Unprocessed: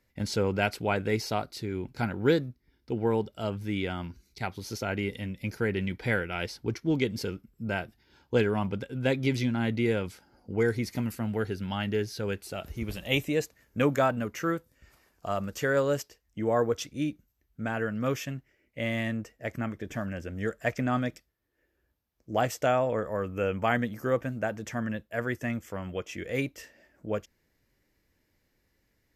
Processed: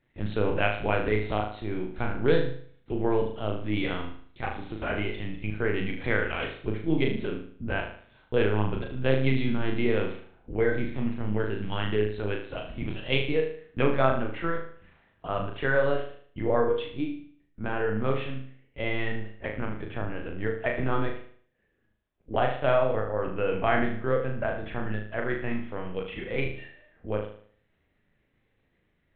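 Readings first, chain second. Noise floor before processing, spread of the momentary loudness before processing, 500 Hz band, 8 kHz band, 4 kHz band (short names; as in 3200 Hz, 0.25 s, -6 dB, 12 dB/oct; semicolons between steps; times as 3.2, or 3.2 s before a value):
-74 dBFS, 10 LU, +2.0 dB, under -35 dB, 0.0 dB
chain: LPC vocoder at 8 kHz pitch kept; flutter echo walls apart 6.5 m, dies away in 0.53 s; ending taper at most 580 dB/s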